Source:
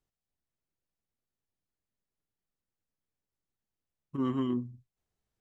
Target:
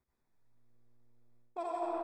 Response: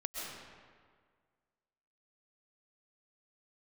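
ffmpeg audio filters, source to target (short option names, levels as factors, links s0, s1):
-filter_complex "[1:a]atrim=start_sample=2205,asetrate=24255,aresample=44100[s0];[0:a][s0]afir=irnorm=-1:irlink=0,acrossover=split=1000[s1][s2];[s1]acontrast=43[s3];[s3][s2]amix=inputs=2:normalize=0,asuperstop=centerf=1100:order=8:qfactor=4.7,asplit=7[s4][s5][s6][s7][s8][s9][s10];[s5]adelay=153,afreqshift=45,volume=0.141[s11];[s6]adelay=306,afreqshift=90,volume=0.0861[s12];[s7]adelay=459,afreqshift=135,volume=0.0525[s13];[s8]adelay=612,afreqshift=180,volume=0.032[s14];[s9]adelay=765,afreqshift=225,volume=0.0195[s15];[s10]adelay=918,afreqshift=270,volume=0.0119[s16];[s4][s11][s12][s13][s14][s15][s16]amix=inputs=7:normalize=0,asetrate=116865,aresample=44100,areverse,acompressor=threshold=0.0282:ratio=16,areverse,volume=0.794"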